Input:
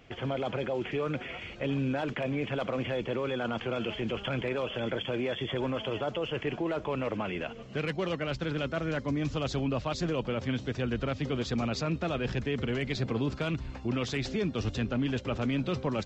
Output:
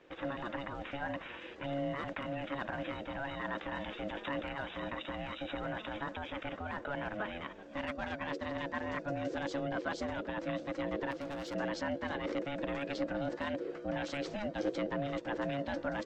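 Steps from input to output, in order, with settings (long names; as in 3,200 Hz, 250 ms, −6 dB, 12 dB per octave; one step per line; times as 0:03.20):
drawn EQ curve 110 Hz 0 dB, 520 Hz −15 dB, 1,100 Hz +3 dB, 2,700 Hz −8 dB
ring modulation 420 Hz
0:11.11–0:11.55: hard clipping −38 dBFS, distortion −23 dB
level +2 dB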